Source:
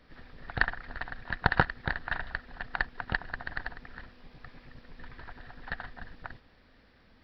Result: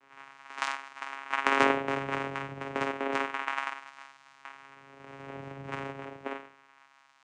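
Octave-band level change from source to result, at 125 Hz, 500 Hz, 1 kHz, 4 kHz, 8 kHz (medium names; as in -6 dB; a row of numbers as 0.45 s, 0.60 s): -6.5 dB, +9.5 dB, +5.0 dB, +3.5 dB, no reading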